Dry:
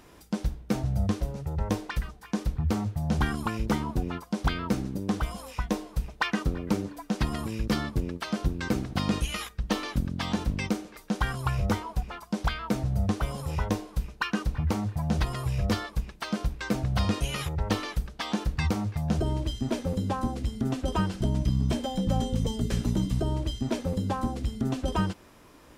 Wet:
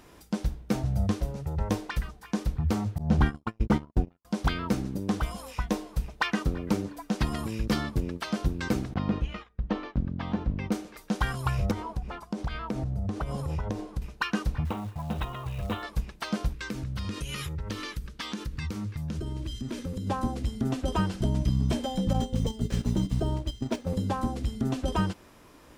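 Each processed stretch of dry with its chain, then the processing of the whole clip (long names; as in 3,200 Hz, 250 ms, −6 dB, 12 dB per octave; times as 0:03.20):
0:02.98–0:04.25: low-pass filter 3,300 Hz 6 dB per octave + low-shelf EQ 460 Hz +4.5 dB + noise gate −25 dBFS, range −57 dB
0:08.94–0:10.72: head-to-tape spacing loss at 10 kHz 35 dB + noise gate −41 dBFS, range −12 dB
0:11.71–0:14.02: low-pass filter 12,000 Hz + tilt shelving filter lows +4 dB, about 1,100 Hz + downward compressor 10 to 1, threshold −26 dBFS
0:14.65–0:15.83: Chebyshev low-pass with heavy ripple 3,900 Hz, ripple 6 dB + log-companded quantiser 6 bits
0:16.53–0:20.07: parametric band 720 Hz −14 dB 0.66 octaves + downward compressor 4 to 1, threshold −30 dBFS
0:22.13–0:23.90: running median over 3 samples + noise gate −29 dBFS, range −8 dB
whole clip: no processing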